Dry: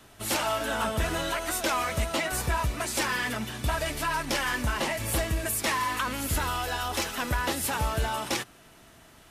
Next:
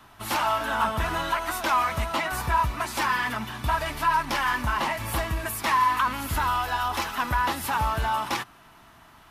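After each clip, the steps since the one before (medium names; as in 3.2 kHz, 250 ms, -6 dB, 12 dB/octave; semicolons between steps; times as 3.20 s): graphic EQ 500/1000/8000 Hz -7/+10/-7 dB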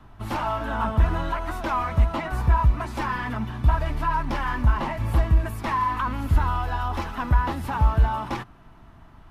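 tilt EQ -3.5 dB/octave; trim -2.5 dB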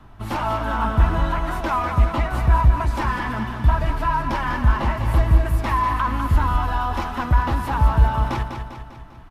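feedback delay 199 ms, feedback 52%, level -7 dB; trim +2.5 dB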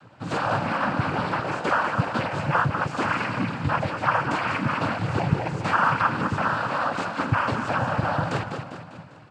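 noise-vocoded speech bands 8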